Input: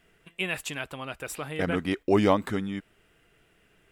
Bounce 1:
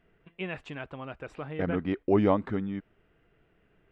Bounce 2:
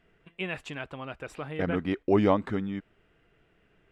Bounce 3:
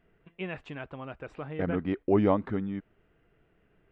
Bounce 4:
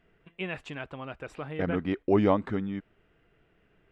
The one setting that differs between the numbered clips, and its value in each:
head-to-tape spacing loss, at 10 kHz: 37, 21, 46, 29 decibels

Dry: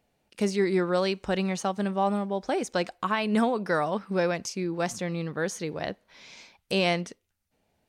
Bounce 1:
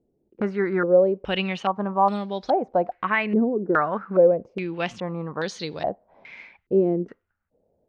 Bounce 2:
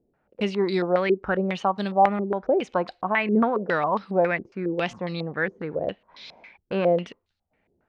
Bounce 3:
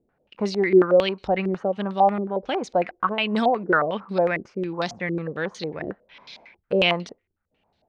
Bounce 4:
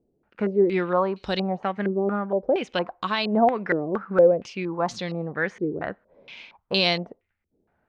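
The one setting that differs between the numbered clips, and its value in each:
low-pass on a step sequencer, speed: 2.4, 7.3, 11, 4.3 Hertz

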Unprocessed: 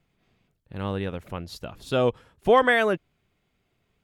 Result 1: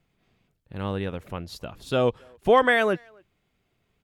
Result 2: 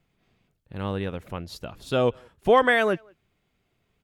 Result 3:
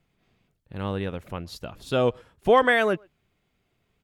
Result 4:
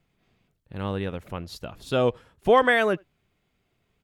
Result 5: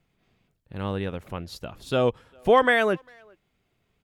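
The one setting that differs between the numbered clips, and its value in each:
far-end echo of a speakerphone, delay time: 270, 180, 120, 80, 400 milliseconds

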